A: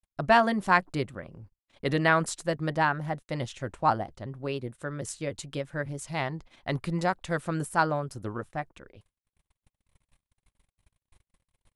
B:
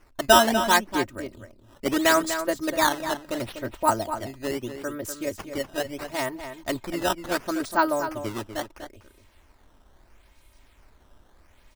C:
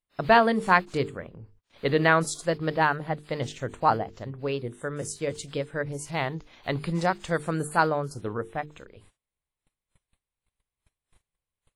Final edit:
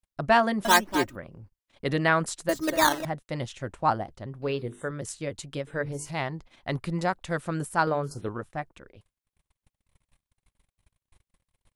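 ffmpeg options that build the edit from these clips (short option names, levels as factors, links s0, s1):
-filter_complex "[1:a]asplit=2[s0][s1];[2:a]asplit=3[s2][s3][s4];[0:a]asplit=6[s5][s6][s7][s8][s9][s10];[s5]atrim=end=0.652[s11];[s0]atrim=start=0.648:end=1.162[s12];[s6]atrim=start=1.158:end=2.492[s13];[s1]atrim=start=2.488:end=3.052[s14];[s7]atrim=start=3.048:end=4.422[s15];[s2]atrim=start=4.418:end=4.912[s16];[s8]atrim=start=4.908:end=5.672[s17];[s3]atrim=start=5.668:end=6.112[s18];[s9]atrim=start=6.108:end=7.872[s19];[s4]atrim=start=7.868:end=8.292[s20];[s10]atrim=start=8.288[s21];[s11][s12]acrossfade=d=0.004:c1=hsin:c2=hsin[s22];[s22][s13]acrossfade=d=0.004:c1=hsin:c2=hsin[s23];[s23][s14]acrossfade=d=0.004:c1=hsin:c2=hsin[s24];[s24][s15]acrossfade=d=0.004:c1=hsin:c2=hsin[s25];[s25][s16]acrossfade=d=0.004:c1=hsin:c2=hsin[s26];[s26][s17]acrossfade=d=0.004:c1=hsin:c2=hsin[s27];[s27][s18]acrossfade=d=0.004:c1=hsin:c2=hsin[s28];[s28][s19]acrossfade=d=0.004:c1=hsin:c2=hsin[s29];[s29][s20]acrossfade=d=0.004:c1=hsin:c2=hsin[s30];[s30][s21]acrossfade=d=0.004:c1=hsin:c2=hsin"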